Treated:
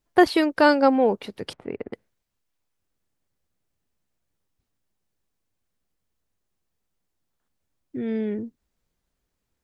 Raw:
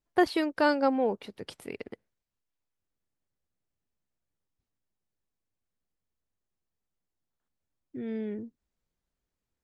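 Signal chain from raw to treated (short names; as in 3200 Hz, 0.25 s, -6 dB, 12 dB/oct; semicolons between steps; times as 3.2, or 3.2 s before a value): 1.53–1.93 LPF 1400 Hz 12 dB/oct; gain +7.5 dB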